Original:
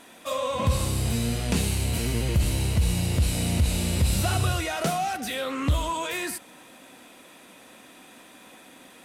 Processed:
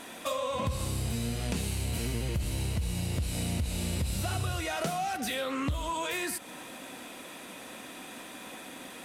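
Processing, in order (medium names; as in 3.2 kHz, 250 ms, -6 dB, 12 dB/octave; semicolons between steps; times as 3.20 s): compression 4:1, threshold -36 dBFS, peak gain reduction 15.5 dB; trim +5 dB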